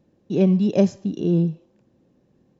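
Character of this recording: noise floor -64 dBFS; spectral tilt -3.0 dB/oct

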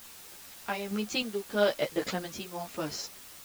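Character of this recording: random-step tremolo 3.3 Hz, depth 70%; a quantiser's noise floor 8-bit, dither triangular; a shimmering, thickened sound

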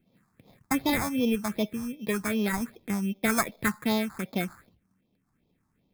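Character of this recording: aliases and images of a low sample rate 2900 Hz, jitter 0%; phasing stages 4, 2.6 Hz, lowest notch 480–1600 Hz

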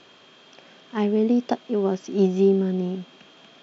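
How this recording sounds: noise floor -52 dBFS; spectral tilt -7.5 dB/oct

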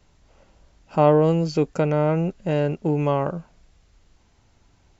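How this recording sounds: noise floor -60 dBFS; spectral tilt -6.5 dB/oct

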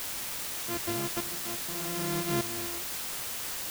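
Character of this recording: a buzz of ramps at a fixed pitch in blocks of 128 samples; tremolo saw up 0.83 Hz, depth 85%; a quantiser's noise floor 6-bit, dither triangular

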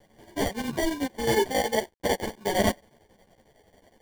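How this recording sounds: a quantiser's noise floor 10-bit, dither none; chopped level 11 Hz, depth 65%, duty 70%; aliases and images of a low sample rate 1300 Hz, jitter 0%; a shimmering, thickened sound

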